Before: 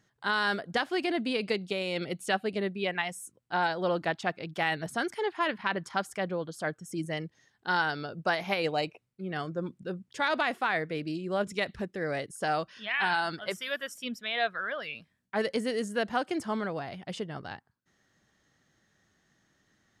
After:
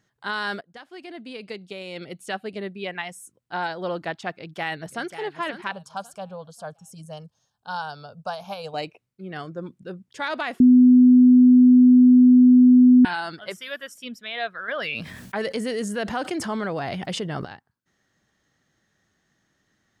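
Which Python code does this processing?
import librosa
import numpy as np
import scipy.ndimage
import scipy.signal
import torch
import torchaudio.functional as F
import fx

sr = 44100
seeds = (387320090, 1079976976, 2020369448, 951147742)

y = fx.echo_throw(x, sr, start_s=4.32, length_s=0.83, ms=540, feedback_pct=40, wet_db=-11.0)
y = fx.fixed_phaser(y, sr, hz=820.0, stages=4, at=(5.71, 8.74))
y = fx.env_flatten(y, sr, amount_pct=70, at=(14.68, 17.45))
y = fx.edit(y, sr, fx.fade_in_from(start_s=0.61, length_s=3.01, curve='qsin', floor_db=-19.5),
    fx.bleep(start_s=10.6, length_s=2.45, hz=250.0, db=-9.0), tone=tone)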